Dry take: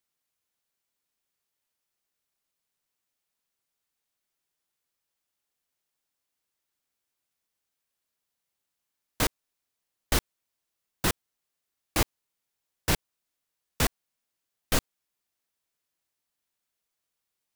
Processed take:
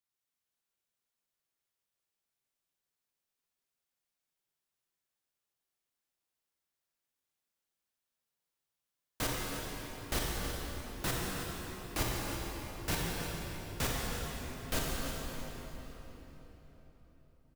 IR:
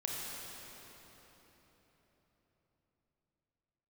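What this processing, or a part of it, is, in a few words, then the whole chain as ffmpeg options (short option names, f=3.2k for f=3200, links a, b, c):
cave: -filter_complex "[0:a]aecho=1:1:321:0.237[a];[1:a]atrim=start_sample=2205[b];[a][b]afir=irnorm=-1:irlink=0,volume=-7.5dB"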